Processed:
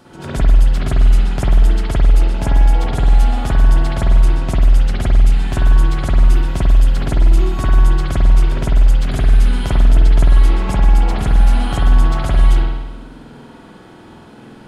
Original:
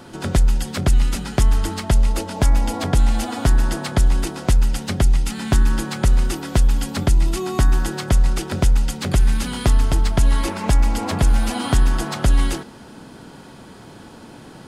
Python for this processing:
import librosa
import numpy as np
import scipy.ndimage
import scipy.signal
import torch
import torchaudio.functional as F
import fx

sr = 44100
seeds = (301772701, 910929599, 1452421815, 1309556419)

y = fx.rev_spring(x, sr, rt60_s=1.1, pass_ms=(48,), chirp_ms=25, drr_db=-7.0)
y = y * librosa.db_to_amplitude(-6.5)